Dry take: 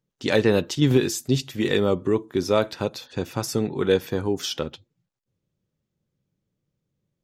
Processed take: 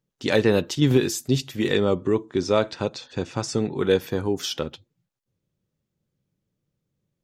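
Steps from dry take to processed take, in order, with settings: 1.73–3.65 s: steep low-pass 8.6 kHz 36 dB/octave

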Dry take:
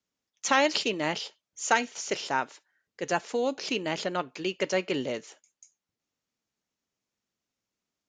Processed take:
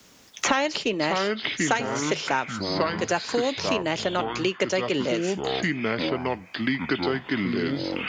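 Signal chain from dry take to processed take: ever faster or slower copies 385 ms, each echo -6 st, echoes 3, each echo -6 dB; three bands compressed up and down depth 100%; trim +3 dB

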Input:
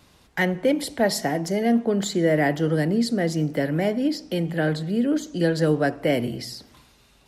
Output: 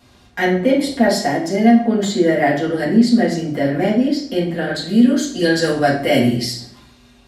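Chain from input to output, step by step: 4.76–6.53 s: treble shelf 2.9 kHz +10 dB; reverberation RT60 0.50 s, pre-delay 4 ms, DRR -6.5 dB; trim -1.5 dB

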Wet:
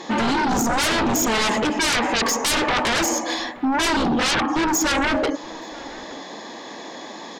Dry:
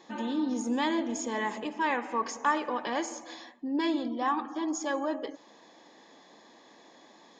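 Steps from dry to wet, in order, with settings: sine folder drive 16 dB, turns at -17 dBFS; echo from a far wall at 150 m, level -19 dB

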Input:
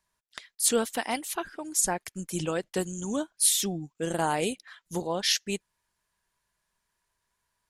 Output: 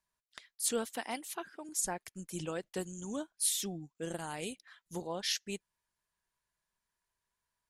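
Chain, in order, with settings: 0.87–1.69 s: high-pass 130 Hz 24 dB/octave; 4.16–4.65 s: peaking EQ 560 Hz -11 dB -> 0 dB 2.7 oct; trim -8.5 dB

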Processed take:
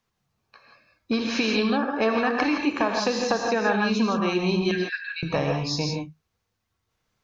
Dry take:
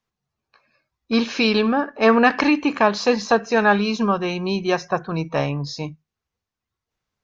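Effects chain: 4.71–5.23 s: Chebyshev band-pass 1.6–4.7 kHz, order 5; compression 6:1, threshold -27 dBFS, peak gain reduction 15.5 dB; gated-style reverb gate 190 ms rising, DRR 2 dB; trim +4.5 dB

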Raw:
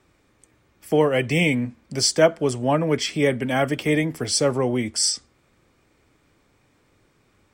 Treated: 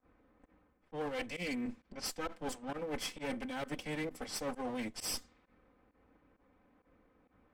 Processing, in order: comb filter that takes the minimum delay 3.9 ms; reverse; compression 8:1, threshold -33 dBFS, peak gain reduction 19 dB; reverse; level-controlled noise filter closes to 1.3 kHz, open at -33 dBFS; volume shaper 132 bpm, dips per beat 1, -23 dB, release 75 ms; trim -3 dB

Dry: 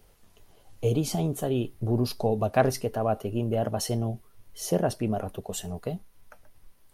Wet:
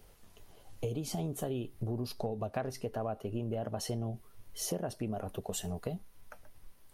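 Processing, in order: 2.13–4.14 s: treble shelf 7.1 kHz -5.5 dB; compression 6:1, threshold -33 dBFS, peak gain reduction 16 dB

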